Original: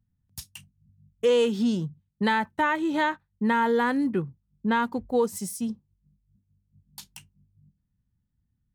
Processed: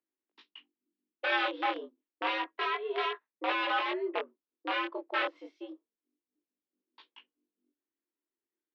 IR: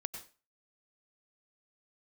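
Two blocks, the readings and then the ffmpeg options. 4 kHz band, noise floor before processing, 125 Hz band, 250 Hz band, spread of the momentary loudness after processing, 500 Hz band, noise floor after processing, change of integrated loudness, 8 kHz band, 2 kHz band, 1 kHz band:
0.0 dB, -77 dBFS, under -40 dB, -16.5 dB, 17 LU, -10.5 dB, under -85 dBFS, -7.0 dB, under -25 dB, -3.0 dB, -5.5 dB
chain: -af "aeval=exprs='(mod(8.91*val(0)+1,2)-1)/8.91':c=same,flanger=delay=18:depth=7.4:speed=0.29,highpass=f=280:t=q:w=0.5412,highpass=f=280:t=q:w=1.307,lowpass=f=3300:t=q:w=0.5176,lowpass=f=3300:t=q:w=0.7071,lowpass=f=3300:t=q:w=1.932,afreqshift=100,volume=0.841"

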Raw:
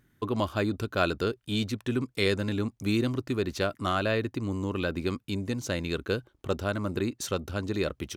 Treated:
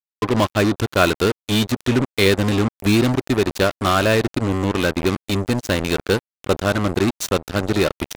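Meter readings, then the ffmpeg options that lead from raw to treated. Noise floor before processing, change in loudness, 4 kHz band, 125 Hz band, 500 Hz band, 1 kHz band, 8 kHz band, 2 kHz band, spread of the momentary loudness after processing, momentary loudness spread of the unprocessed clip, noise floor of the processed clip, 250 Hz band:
-70 dBFS, +10.5 dB, +11.0 dB, +10.0 dB, +10.5 dB, +11.0 dB, +12.0 dB, +10.5 dB, 5 LU, 5 LU, under -85 dBFS, +10.0 dB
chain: -af "acontrast=69,acrusher=bits=3:mix=0:aa=0.5,volume=1.5"

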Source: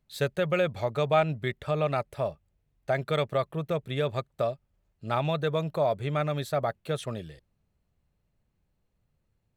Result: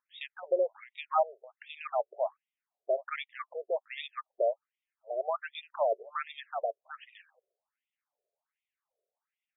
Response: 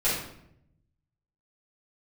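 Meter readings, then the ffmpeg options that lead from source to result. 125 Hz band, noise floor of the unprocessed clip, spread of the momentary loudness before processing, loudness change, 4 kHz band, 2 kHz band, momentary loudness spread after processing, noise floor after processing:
under -40 dB, -76 dBFS, 8 LU, -5.0 dB, -7.5 dB, -7.0 dB, 15 LU, under -85 dBFS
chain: -af "aphaser=in_gain=1:out_gain=1:delay=1.4:decay=0.26:speed=2:type=triangular,afftfilt=real='re*between(b*sr/1024,490*pow(2700/490,0.5+0.5*sin(2*PI*1.3*pts/sr))/1.41,490*pow(2700/490,0.5+0.5*sin(2*PI*1.3*pts/sr))*1.41)':imag='im*between(b*sr/1024,490*pow(2700/490,0.5+0.5*sin(2*PI*1.3*pts/sr))/1.41,490*pow(2700/490,0.5+0.5*sin(2*PI*1.3*pts/sr))*1.41)':win_size=1024:overlap=0.75"

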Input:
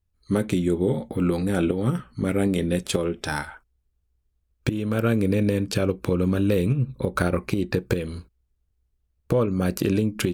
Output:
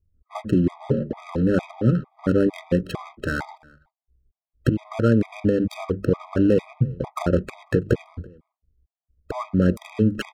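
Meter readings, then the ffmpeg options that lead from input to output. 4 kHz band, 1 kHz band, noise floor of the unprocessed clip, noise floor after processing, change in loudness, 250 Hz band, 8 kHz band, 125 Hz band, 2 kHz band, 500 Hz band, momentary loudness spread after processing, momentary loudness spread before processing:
-6.0 dB, 0.0 dB, -72 dBFS, under -85 dBFS, +1.0 dB, +1.5 dB, under -10 dB, +1.0 dB, -1.0 dB, +0.5 dB, 11 LU, 6 LU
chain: -filter_complex "[0:a]highshelf=f=2600:g=-11.5,bandreject=f=50:t=h:w=6,bandreject=f=100:t=h:w=6,bandreject=f=150:t=h:w=6,bandreject=f=200:t=h:w=6,asplit=2[s0][s1];[s1]alimiter=limit=0.15:level=0:latency=1:release=210,volume=1.33[s2];[s0][s2]amix=inputs=2:normalize=0,adynamicsmooth=sensitivity=3.5:basefreq=590,asplit=2[s3][s4];[s4]adelay=332.4,volume=0.0562,highshelf=f=4000:g=-7.48[s5];[s3][s5]amix=inputs=2:normalize=0,afftfilt=real='re*gt(sin(2*PI*2.2*pts/sr)*(1-2*mod(floor(b*sr/1024/640),2)),0)':imag='im*gt(sin(2*PI*2.2*pts/sr)*(1-2*mod(floor(b*sr/1024/640),2)),0)':win_size=1024:overlap=0.75"

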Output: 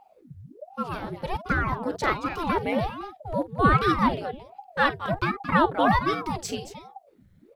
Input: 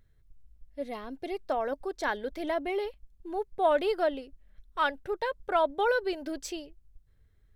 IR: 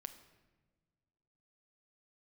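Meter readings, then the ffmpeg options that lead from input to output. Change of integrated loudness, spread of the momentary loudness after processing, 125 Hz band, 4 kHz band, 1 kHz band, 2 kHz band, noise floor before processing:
+5.5 dB, 15 LU, no reading, +5.0 dB, +7.5 dB, +7.0 dB, -63 dBFS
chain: -af "aecho=1:1:46|224:0.168|0.266,aeval=exprs='val(0)*sin(2*PI*450*n/s+450*0.8/1.3*sin(2*PI*1.3*n/s))':c=same,volume=2.51"

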